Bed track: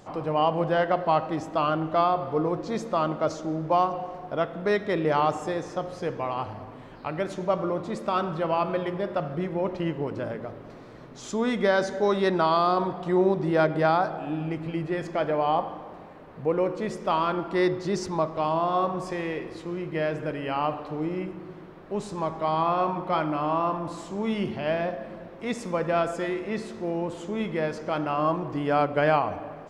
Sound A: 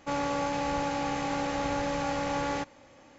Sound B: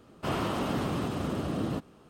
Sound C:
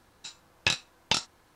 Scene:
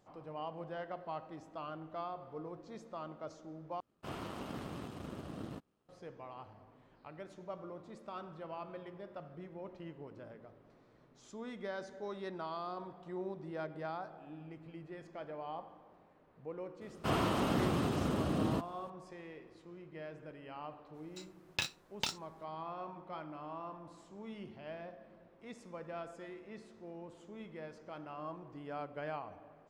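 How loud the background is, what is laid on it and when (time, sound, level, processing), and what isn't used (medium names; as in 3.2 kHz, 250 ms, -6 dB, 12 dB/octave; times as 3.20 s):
bed track -19.5 dB
3.80 s: replace with B -10.5 dB + power-law waveshaper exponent 1.4
16.81 s: add B -2 dB
20.92 s: add C -10 dB, fades 0.05 s + block-companded coder 5-bit
not used: A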